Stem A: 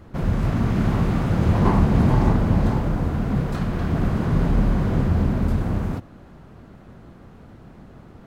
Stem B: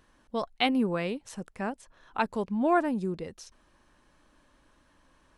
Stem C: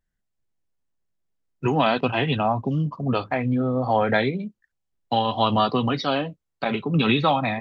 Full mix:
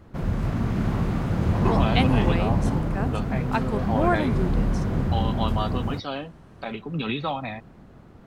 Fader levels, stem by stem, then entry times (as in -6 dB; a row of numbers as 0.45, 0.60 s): -4.0, +1.0, -8.0 dB; 0.00, 1.35, 0.00 s